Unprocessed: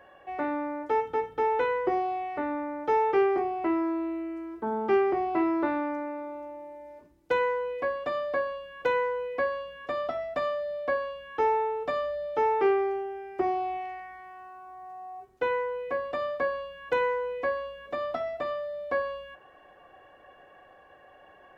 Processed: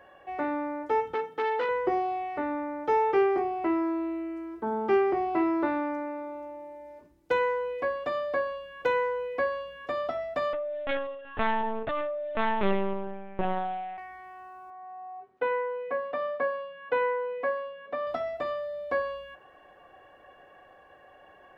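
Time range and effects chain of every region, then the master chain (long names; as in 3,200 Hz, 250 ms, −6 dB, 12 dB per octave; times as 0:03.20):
0:01.14–0:01.69: high-pass filter 160 Hz 24 dB per octave + saturating transformer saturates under 1,100 Hz
0:10.53–0:13.98: phase distortion by the signal itself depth 0.35 ms + linear-prediction vocoder at 8 kHz pitch kept
0:14.70–0:18.07: band-pass filter 190–2,600 Hz + notch filter 350 Hz, Q 5.9
whole clip: no processing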